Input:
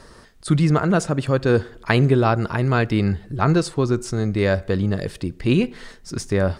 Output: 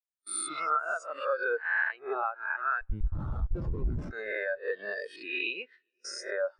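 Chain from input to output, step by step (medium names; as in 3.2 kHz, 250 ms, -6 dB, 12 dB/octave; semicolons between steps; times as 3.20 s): reverse spectral sustain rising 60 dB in 1.03 s; gate with hold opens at -20 dBFS; high-pass 950 Hz 12 dB/octave; compression 12:1, threshold -32 dBFS, peak gain reduction 19.5 dB; 2.81–4.11 s: Schmitt trigger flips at -32 dBFS; wow and flutter 16 cents; on a send: multi-head delay 199 ms, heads second and third, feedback 48%, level -22 dB; on the sum: spectral contrast expander 2.5:1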